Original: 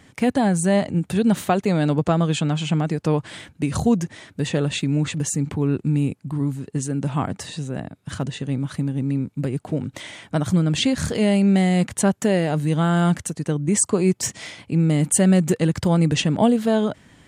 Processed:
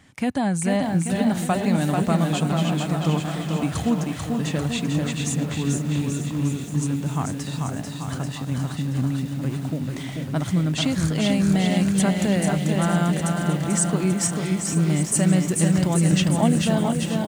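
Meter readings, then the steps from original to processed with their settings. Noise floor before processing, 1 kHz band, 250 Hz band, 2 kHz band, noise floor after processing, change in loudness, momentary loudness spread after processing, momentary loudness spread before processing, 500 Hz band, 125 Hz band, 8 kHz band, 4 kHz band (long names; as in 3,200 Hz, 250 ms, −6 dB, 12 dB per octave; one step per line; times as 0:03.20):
−56 dBFS, −1.0 dB, −1.0 dB, −0.5 dB, −32 dBFS, −1.5 dB, 8 LU, 10 LU, −4.0 dB, −0.5 dB, −0.5 dB, −0.5 dB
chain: parametric band 440 Hz −6.5 dB 0.61 octaves
on a send: bouncing-ball delay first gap 440 ms, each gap 0.9×, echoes 5
on the sum: feedback echo at a low word length 471 ms, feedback 80%, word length 6 bits, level −12 dB
level −3 dB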